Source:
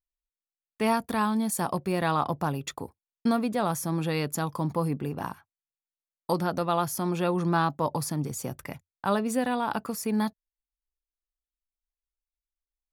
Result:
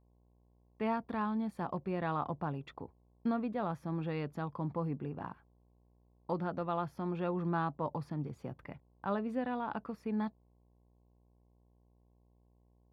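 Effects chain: mains buzz 60 Hz, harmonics 18, -60 dBFS -6 dB/octave; distance through air 390 m; trim -7.5 dB

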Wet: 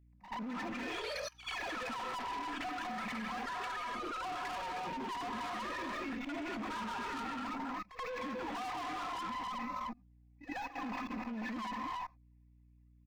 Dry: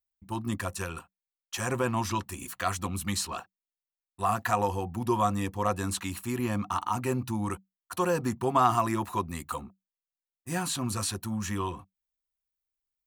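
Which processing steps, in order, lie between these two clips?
formants replaced by sine waves; gated-style reverb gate 330 ms rising, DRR 4 dB; power-law waveshaper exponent 0.7; static phaser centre 2.1 kHz, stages 8; comb 4 ms, depth 71%; in parallel at -0.5 dB: compression 12:1, threshold -30 dBFS, peak gain reduction 16.5 dB; on the sum: gate -27 dBFS, range -22 dB; ever faster or slower copies 303 ms, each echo +5 st, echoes 3, each echo -6 dB; valve stage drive 26 dB, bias 0.45; hum 60 Hz, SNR 35 dB; level held to a coarse grid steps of 24 dB; reverse echo 81 ms -13 dB; trim +8 dB

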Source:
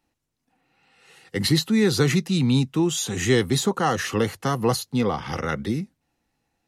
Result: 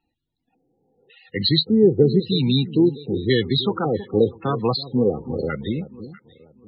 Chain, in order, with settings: LFO low-pass square 0.91 Hz 440–3800 Hz; echo whose repeats swap between lows and highs 322 ms, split 930 Hz, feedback 52%, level -13 dB; loudest bins only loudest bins 32

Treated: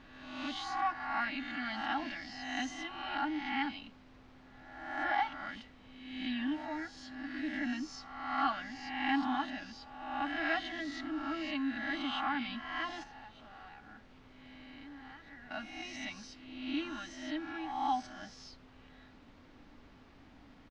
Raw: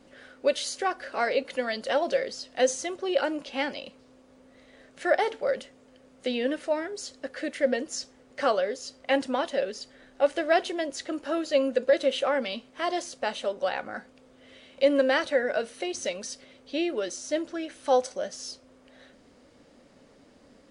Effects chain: reverse spectral sustain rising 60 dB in 1.03 s; elliptic band-stop 310–710 Hz, stop band 40 dB; comb 3.6 ms, depth 80%; 13.03–15.51 s: compression 6:1, threshold -42 dBFS, peak gain reduction 23 dB; added noise pink -50 dBFS; distance through air 230 m; trim -8 dB

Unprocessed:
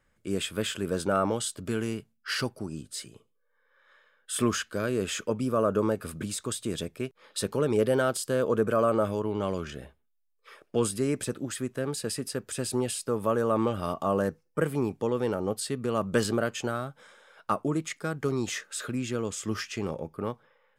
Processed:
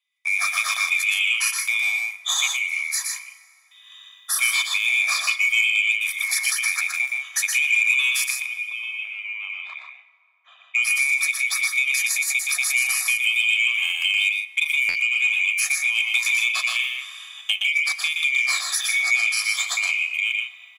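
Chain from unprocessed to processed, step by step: split-band scrambler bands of 2 kHz; steep high-pass 780 Hz 48 dB/octave; gate with hold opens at -58 dBFS; treble shelf 2.3 kHz +6 dB; comb 1.7 ms, depth 72%; compression 3:1, threshold -29 dBFS, peak gain reduction 12 dB; 8.30–10.75 s: tape spacing loss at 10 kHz 44 dB; loudspeakers at several distances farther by 41 m -4 dB, 54 m -8 dB; reverberation RT60 3.1 s, pre-delay 3 ms, DRR 14.5 dB; buffer glitch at 14.88 s, samples 512, times 5; transformer saturation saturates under 2.7 kHz; trim +7.5 dB

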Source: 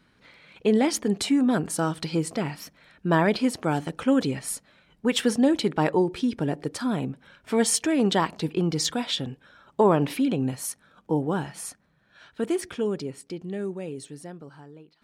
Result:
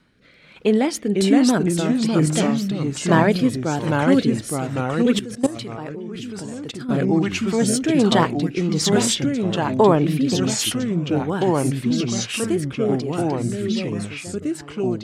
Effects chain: ever faster or slower copies 419 ms, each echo -2 st, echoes 3; rotary cabinet horn 1.2 Hz; 5.19–6.89 s: level held to a coarse grid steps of 18 dB; trim +5 dB

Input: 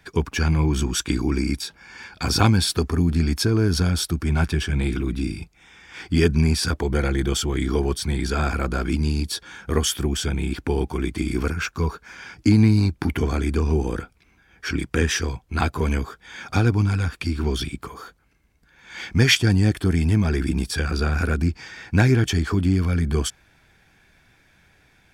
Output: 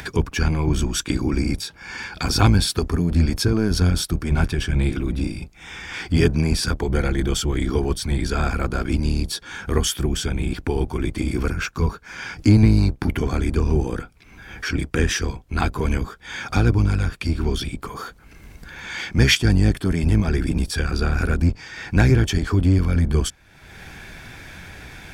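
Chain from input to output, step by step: octave divider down 1 oct, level -3 dB; upward compressor, threshold -23 dBFS

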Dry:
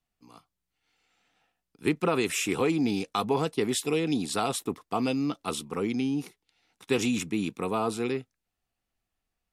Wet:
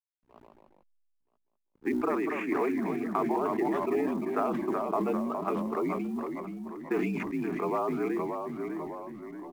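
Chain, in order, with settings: spectral gate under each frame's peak -30 dB strong; hum notches 60/120/180/240/300/360/420 Hz; level-controlled noise filter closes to 620 Hz, open at -28 dBFS; mistuned SSB -53 Hz 350–2000 Hz; compression 12:1, threshold -28 dBFS, peak gain reduction 7.5 dB; short-mantissa float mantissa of 4-bit; hysteresis with a dead band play -55 dBFS; on a send: delay 976 ms -22 dB; on the sum: ever faster or slower copies 119 ms, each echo -1 st, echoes 3, each echo -6 dB; decay stretcher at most 25 dB/s; trim +2.5 dB

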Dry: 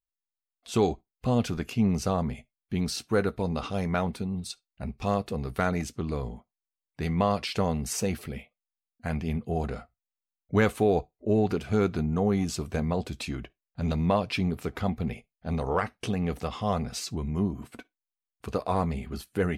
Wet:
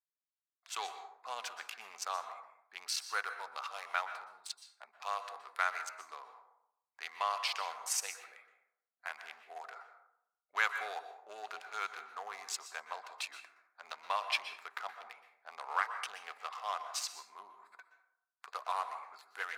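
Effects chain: local Wiener filter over 15 samples; high-pass 1 kHz 24 dB/octave; plate-style reverb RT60 0.75 s, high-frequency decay 0.45×, pre-delay 110 ms, DRR 9 dB

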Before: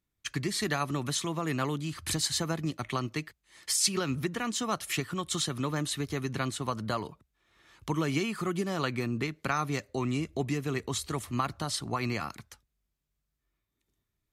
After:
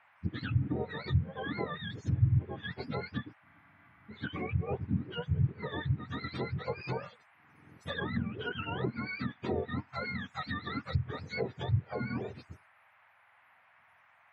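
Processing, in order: spectrum inverted on a logarithmic axis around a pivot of 730 Hz; low-pass that closes with the level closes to 310 Hz, closed at -23.5 dBFS; band noise 670–2300 Hz -62 dBFS; spectral freeze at 3.47 s, 0.62 s; trim -2 dB

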